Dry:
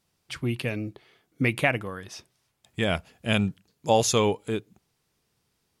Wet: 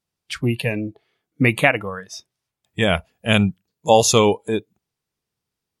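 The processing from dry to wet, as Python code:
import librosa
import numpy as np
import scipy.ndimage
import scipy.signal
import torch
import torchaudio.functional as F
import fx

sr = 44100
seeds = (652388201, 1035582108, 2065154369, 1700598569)

y = fx.noise_reduce_blind(x, sr, reduce_db=17)
y = y * librosa.db_to_amplitude(7.5)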